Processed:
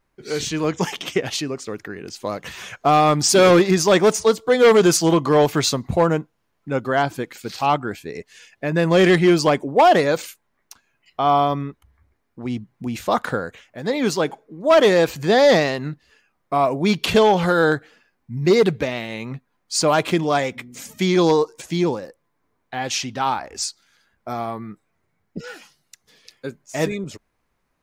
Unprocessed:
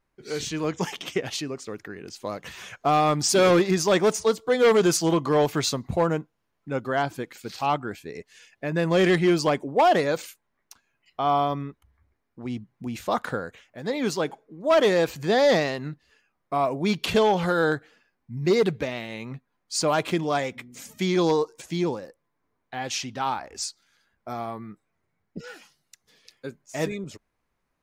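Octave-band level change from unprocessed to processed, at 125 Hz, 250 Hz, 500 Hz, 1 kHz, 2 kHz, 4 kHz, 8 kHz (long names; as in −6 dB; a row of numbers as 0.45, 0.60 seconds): +5.5, +5.5, +5.5, +5.5, +5.5, +5.5, +5.5 decibels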